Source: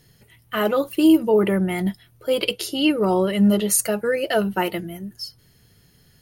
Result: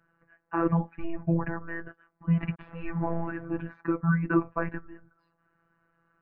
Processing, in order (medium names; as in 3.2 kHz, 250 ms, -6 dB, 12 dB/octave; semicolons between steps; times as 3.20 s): 2.37–3.45 s: send-on-delta sampling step -34.5 dBFS; mistuned SSB -320 Hz 440–2000 Hz; robot voice 167 Hz